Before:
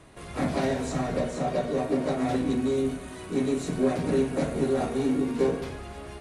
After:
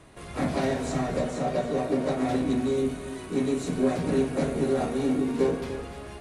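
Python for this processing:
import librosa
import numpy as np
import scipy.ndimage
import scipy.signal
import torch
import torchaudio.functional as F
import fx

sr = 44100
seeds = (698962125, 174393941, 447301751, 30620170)

y = x + 10.0 ** (-12.0 / 20.0) * np.pad(x, (int(296 * sr / 1000.0), 0))[:len(x)]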